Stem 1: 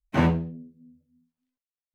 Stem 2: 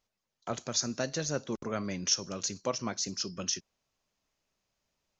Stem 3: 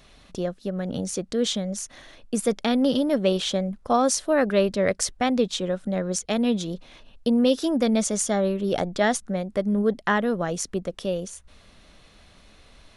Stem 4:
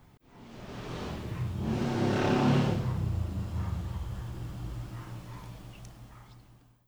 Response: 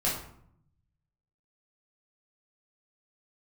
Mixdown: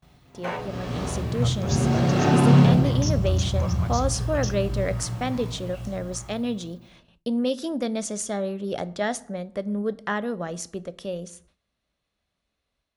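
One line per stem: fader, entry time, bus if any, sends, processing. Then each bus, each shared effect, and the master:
−1.0 dB, 0.30 s, bus A, no send, no processing
−4.5 dB, 0.95 s, bus A, no send, no processing
−10.0 dB, 0.00 s, no bus, send −23 dB, no processing
−5.0 dB, 0.00 s, no bus, send −4 dB, no processing
bus A: 0.0 dB, elliptic high-pass filter 400 Hz; downward compressor 1.5 to 1, threshold −41 dBFS, peak gain reduction 6 dB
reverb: on, RT60 0.65 s, pre-delay 7 ms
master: noise gate with hold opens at −47 dBFS; high-pass filter 44 Hz; automatic gain control gain up to 4.5 dB

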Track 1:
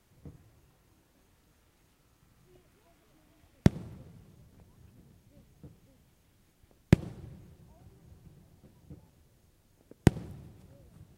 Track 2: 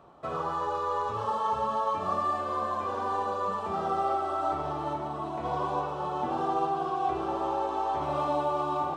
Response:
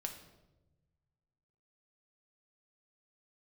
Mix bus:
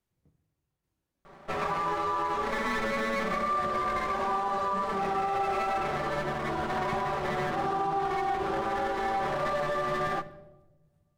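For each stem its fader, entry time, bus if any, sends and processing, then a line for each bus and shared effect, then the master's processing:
−20.0 dB, 0.00 s, send −5 dB, shaped tremolo saw down 1.2 Hz, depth 40%
+2.0 dB, 1.25 s, send −5.5 dB, lower of the sound and its delayed copy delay 5.1 ms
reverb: on, RT60 1.1 s, pre-delay 5 ms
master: brickwall limiter −21.5 dBFS, peak gain reduction 8.5 dB

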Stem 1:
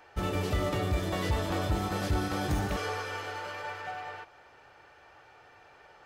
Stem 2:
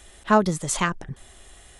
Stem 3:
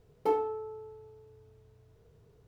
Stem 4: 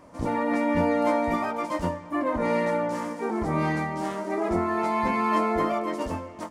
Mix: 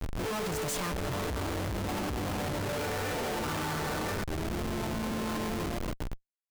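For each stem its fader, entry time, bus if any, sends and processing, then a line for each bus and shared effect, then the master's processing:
+2.5 dB, 0.00 s, no send, echo send −22 dB, brickwall limiter −31.5 dBFS, peak gain reduction 11.5 dB; step-sequenced phaser 3.2 Hz 230–3,100 Hz
−3.0 dB, 0.00 s, no send, no echo send, no processing
+2.0 dB, 0.00 s, no send, no echo send, brick-wall band-pass 250–1,400 Hz; comb filter 4.2 ms, depth 74%
−20.0 dB, 0.00 s, no send, echo send −10.5 dB, no processing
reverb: not used
echo: repeating echo 104 ms, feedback 48%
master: comparator with hysteresis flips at −42.5 dBFS

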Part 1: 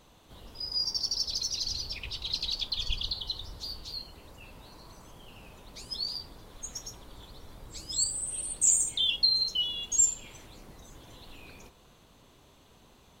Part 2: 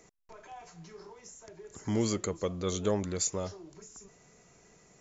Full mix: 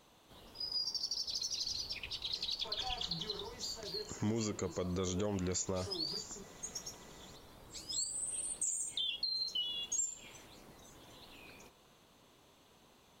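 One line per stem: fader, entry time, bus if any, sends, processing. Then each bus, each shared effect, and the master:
−4.0 dB, 0.00 s, no send, low-shelf EQ 100 Hz −12 dB; downward compressor, threshold −30 dBFS, peak gain reduction 11 dB
+2.5 dB, 2.35 s, no send, downward compressor, threshold −32 dBFS, peak gain reduction 8 dB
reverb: not used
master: brickwall limiter −27 dBFS, peak gain reduction 7.5 dB

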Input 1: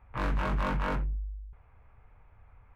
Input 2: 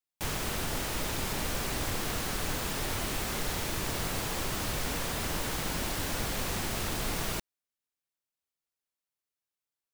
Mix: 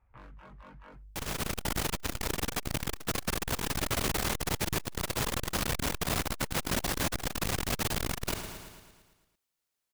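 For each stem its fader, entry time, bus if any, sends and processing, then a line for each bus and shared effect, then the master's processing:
−7.5 dB, 0.00 s, no send, no echo send, reverb reduction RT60 1.5 s; downward compressor 4 to 1, threshold −37 dBFS, peak gain reduction 8.5 dB; flanger 0.96 Hz, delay 0.2 ms, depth 9.7 ms, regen −90%
−1.0 dB, 0.95 s, no send, echo send −12 dB, automatic gain control gain up to 7 dB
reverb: not used
echo: repeating echo 112 ms, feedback 59%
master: saturating transformer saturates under 360 Hz

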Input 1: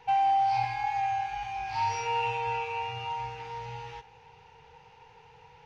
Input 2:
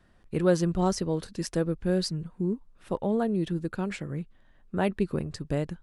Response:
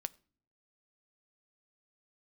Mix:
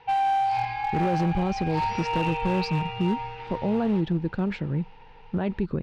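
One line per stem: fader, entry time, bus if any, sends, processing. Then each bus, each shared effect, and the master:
0.0 dB, 0.00 s, send −9.5 dB, no processing
0.0 dB, 0.60 s, send −16 dB, low-shelf EQ 300 Hz +7.5 dB; brickwall limiter −18 dBFS, peak gain reduction 11 dB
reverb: on, pre-delay 6 ms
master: low-pass filter 4,500 Hz 24 dB per octave; asymmetric clip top −21.5 dBFS, bottom −16 dBFS

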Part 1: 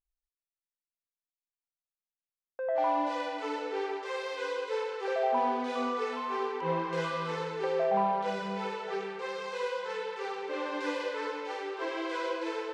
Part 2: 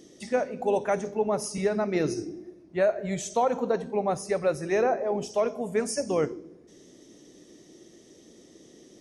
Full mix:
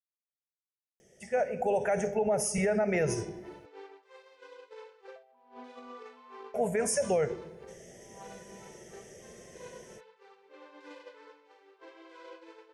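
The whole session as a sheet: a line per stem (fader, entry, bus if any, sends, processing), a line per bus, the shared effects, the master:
−10.5 dB, 0.00 s, no send, downward expander −25 dBFS; compressor whose output falls as the input rises −38 dBFS, ratio −0.5
−3.5 dB, 1.00 s, muted 0:03.66–0:06.54, no send, automatic gain control gain up to 12 dB; phaser with its sweep stopped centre 1,100 Hz, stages 6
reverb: not used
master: brickwall limiter −20 dBFS, peak gain reduction 10.5 dB

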